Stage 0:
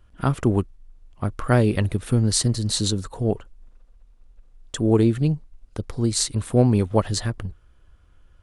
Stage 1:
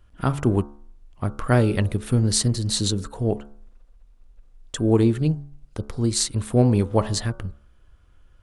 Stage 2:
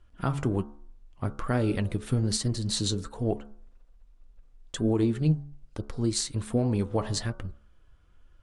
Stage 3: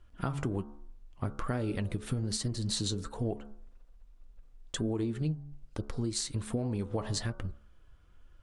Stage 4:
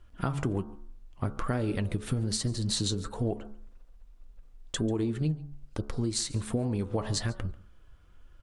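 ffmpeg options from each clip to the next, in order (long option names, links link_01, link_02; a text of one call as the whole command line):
ffmpeg -i in.wav -af "bandreject=frequency=71.26:width_type=h:width=4,bandreject=frequency=142.52:width_type=h:width=4,bandreject=frequency=213.78:width_type=h:width=4,bandreject=frequency=285.04:width_type=h:width=4,bandreject=frequency=356.3:width_type=h:width=4,bandreject=frequency=427.56:width_type=h:width=4,bandreject=frequency=498.82:width_type=h:width=4,bandreject=frequency=570.08:width_type=h:width=4,bandreject=frequency=641.34:width_type=h:width=4,bandreject=frequency=712.6:width_type=h:width=4,bandreject=frequency=783.86:width_type=h:width=4,bandreject=frequency=855.12:width_type=h:width=4,bandreject=frequency=926.38:width_type=h:width=4,bandreject=frequency=997.64:width_type=h:width=4,bandreject=frequency=1068.9:width_type=h:width=4,bandreject=frequency=1140.16:width_type=h:width=4,bandreject=frequency=1211.42:width_type=h:width=4,bandreject=frequency=1282.68:width_type=h:width=4,bandreject=frequency=1353.94:width_type=h:width=4,bandreject=frequency=1425.2:width_type=h:width=4,bandreject=frequency=1496.46:width_type=h:width=4,bandreject=frequency=1567.72:width_type=h:width=4" out.wav
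ffmpeg -i in.wav -af "alimiter=limit=-11.5dB:level=0:latency=1:release=106,flanger=delay=2.7:depth=5.1:regen=64:speed=1.2:shape=triangular,lowpass=9700" out.wav
ffmpeg -i in.wav -af "acompressor=threshold=-29dB:ratio=6" out.wav
ffmpeg -i in.wav -af "aecho=1:1:141:0.0794,volume=3dB" out.wav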